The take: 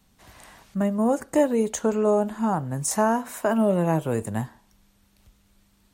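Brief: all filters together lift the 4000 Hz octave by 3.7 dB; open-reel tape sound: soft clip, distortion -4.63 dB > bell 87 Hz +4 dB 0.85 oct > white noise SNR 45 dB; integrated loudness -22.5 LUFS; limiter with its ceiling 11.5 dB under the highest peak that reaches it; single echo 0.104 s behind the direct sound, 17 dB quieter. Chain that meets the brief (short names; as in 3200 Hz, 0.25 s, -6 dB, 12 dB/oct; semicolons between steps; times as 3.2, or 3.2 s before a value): bell 4000 Hz +5.5 dB; limiter -20.5 dBFS; echo 0.104 s -17 dB; soft clip -39 dBFS; bell 87 Hz +4 dB 0.85 oct; white noise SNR 45 dB; gain +18.5 dB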